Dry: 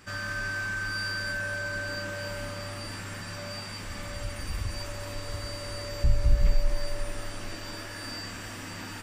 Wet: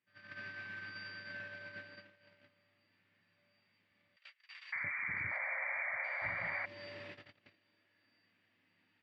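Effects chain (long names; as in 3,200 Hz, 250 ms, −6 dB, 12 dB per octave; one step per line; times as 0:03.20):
noise gate −30 dBFS, range −37 dB
0:04.72–0:06.66: sound drawn into the spectrogram noise 520–2,400 Hz −26 dBFS
flat-topped bell 3,000 Hz +13.5 dB
downward compressor 2 to 1, threshold −43 dBFS, peak gain reduction 17 dB
high-pass filter 120 Hz 24 dB per octave
head-to-tape spacing loss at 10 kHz 34 dB
0:04.16–0:06.22: multiband delay without the direct sound highs, lows 590 ms, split 1,100 Hz
level +1 dB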